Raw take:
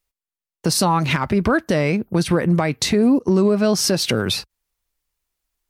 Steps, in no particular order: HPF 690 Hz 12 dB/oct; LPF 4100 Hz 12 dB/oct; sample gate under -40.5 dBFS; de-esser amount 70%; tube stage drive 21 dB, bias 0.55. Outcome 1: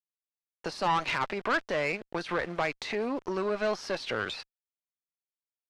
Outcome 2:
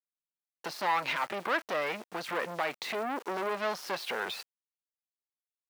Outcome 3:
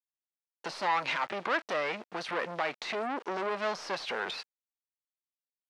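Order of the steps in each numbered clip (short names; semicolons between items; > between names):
HPF > sample gate > de-esser > LPF > tube stage; de-esser > tube stage > LPF > sample gate > HPF; tube stage > sample gate > HPF > de-esser > LPF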